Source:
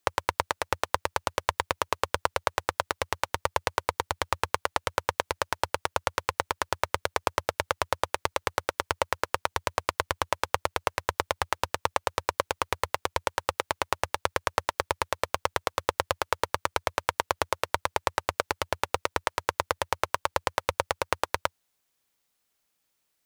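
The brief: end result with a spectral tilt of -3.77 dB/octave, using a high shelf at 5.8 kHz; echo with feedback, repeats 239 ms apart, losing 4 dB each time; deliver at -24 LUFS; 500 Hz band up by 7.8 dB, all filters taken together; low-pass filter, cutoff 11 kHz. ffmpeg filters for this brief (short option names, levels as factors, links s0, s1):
-af "lowpass=11000,equalizer=f=500:t=o:g=9,highshelf=f=5800:g=-7.5,aecho=1:1:239|478|717|956|1195|1434|1673|1912|2151:0.631|0.398|0.25|0.158|0.0994|0.0626|0.0394|0.0249|0.0157,volume=1.12"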